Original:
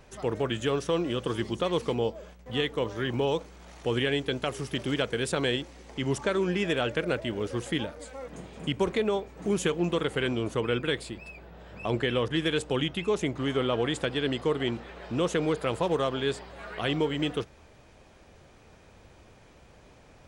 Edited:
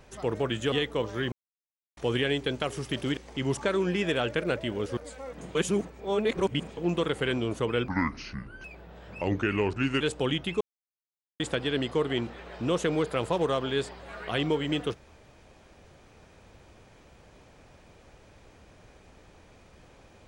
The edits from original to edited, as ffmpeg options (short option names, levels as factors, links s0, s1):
-filter_complex "[0:a]asplit=14[s0][s1][s2][s3][s4][s5][s6][s7][s8][s9][s10][s11][s12][s13];[s0]atrim=end=0.722[s14];[s1]atrim=start=2.538:end=3.14,asetpts=PTS-STARTPTS,afade=t=out:st=0.598:d=0.004:c=hsin[s15];[s2]atrim=start=3.14:end=3.79,asetpts=PTS-STARTPTS,volume=0[s16];[s3]atrim=start=3.79:end=4.992,asetpts=PTS-STARTPTS,afade=t=in:d=0.004:c=hsin[s17];[s4]atrim=start=5.778:end=7.582[s18];[s5]atrim=start=7.918:end=8.502[s19];[s6]atrim=start=8.498:end=9.722,asetpts=PTS-STARTPTS,areverse[s20];[s7]atrim=start=9.718:end=10.834[s21];[s8]atrim=start=10.83:end=11.28,asetpts=PTS-STARTPTS,asetrate=26019,aresample=44100[s22];[s9]atrim=start=11.276:end=11.854[s23];[s10]atrim=start=11.85:end=12.51,asetpts=PTS-STARTPTS,asetrate=36603,aresample=44100,atrim=end_sample=35067,asetpts=PTS-STARTPTS[s24];[s11]atrim=start=12.506:end=13.11,asetpts=PTS-STARTPTS,afade=t=out:st=0.6:d=0.004:c=hsin[s25];[s12]atrim=start=13.11:end=13.9,asetpts=PTS-STARTPTS,volume=0[s26];[s13]atrim=start=13.9,asetpts=PTS-STARTPTS,afade=t=in:d=0.004:c=hsin[s27];[s15][s16][s17]concat=n=3:v=0:a=1[s28];[s14][s28]acrossfade=d=0.004:c1=hsin:c2=hsin[s29];[s29][s18]acrossfade=d=0.004:c1=hsin:c2=hsin[s30];[s30][s19]acrossfade=d=0.004:c1=hsin:c2=hsin[s31];[s31][s20]acrossfade=d=0.004:c1=hsin:c2=hsin[s32];[s32][s21]acrossfade=d=0.004:c1=hsin:c2=hsin[s33];[s33][s22]acrossfade=d=0.004:c1=hsin:c2=hsin[s34];[s34][s23]acrossfade=d=0.004:c1=hsin:c2=hsin[s35];[s35][s24]acrossfade=d=0.004:c1=hsin:c2=hsin[s36];[s25][s26][s27]concat=n=3:v=0:a=1[s37];[s36][s37]acrossfade=d=0.004:c1=hsin:c2=hsin"